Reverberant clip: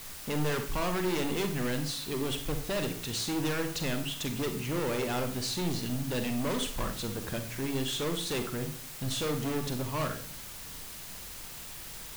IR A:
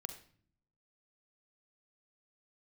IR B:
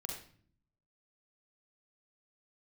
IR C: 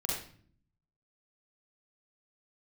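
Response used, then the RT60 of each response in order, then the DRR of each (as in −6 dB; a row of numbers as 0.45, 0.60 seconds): A; non-exponential decay, 0.50 s, 0.50 s; 6.5, −0.5, −5.0 decibels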